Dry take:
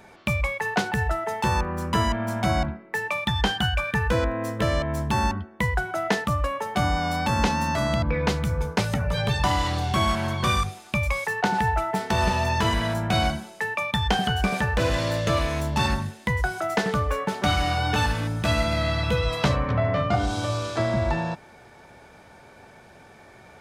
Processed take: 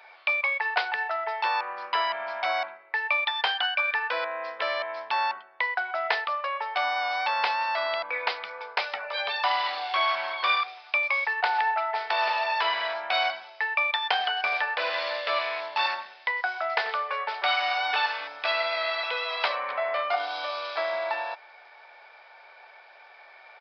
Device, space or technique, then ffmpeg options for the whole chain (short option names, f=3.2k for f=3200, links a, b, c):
musical greeting card: -af "aresample=11025,aresample=44100,highpass=f=650:w=0.5412,highpass=f=650:w=1.3066,equalizer=f=2.3k:t=o:w=0.28:g=5"